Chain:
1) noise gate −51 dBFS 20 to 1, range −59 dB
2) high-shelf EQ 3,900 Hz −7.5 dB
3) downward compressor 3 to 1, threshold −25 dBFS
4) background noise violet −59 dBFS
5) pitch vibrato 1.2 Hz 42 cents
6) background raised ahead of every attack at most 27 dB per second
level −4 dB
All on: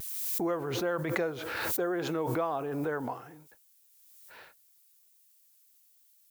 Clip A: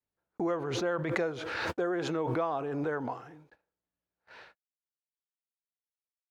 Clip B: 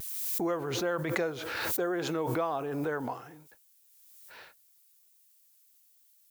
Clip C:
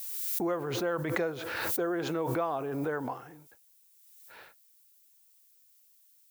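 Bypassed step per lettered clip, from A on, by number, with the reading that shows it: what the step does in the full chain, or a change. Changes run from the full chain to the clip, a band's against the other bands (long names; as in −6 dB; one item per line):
4, 8 kHz band −9.0 dB
2, 4 kHz band +2.0 dB
5, change in momentary loudness spread +5 LU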